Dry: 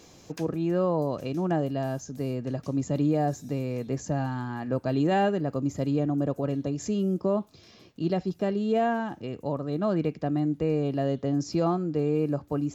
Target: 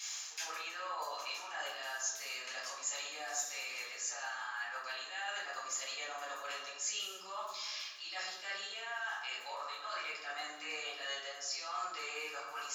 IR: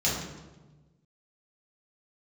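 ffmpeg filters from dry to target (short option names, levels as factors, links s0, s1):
-filter_complex "[0:a]highpass=f=1300:w=0.5412,highpass=f=1300:w=1.3066,areverse,acompressor=threshold=0.00251:ratio=10,areverse[s0];[1:a]atrim=start_sample=2205[s1];[s0][s1]afir=irnorm=-1:irlink=0,volume=1.58"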